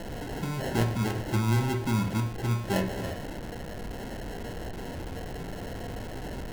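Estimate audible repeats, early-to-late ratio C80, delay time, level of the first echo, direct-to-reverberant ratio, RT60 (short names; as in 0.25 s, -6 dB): none, 13.5 dB, none, none, 4.0 dB, 0.50 s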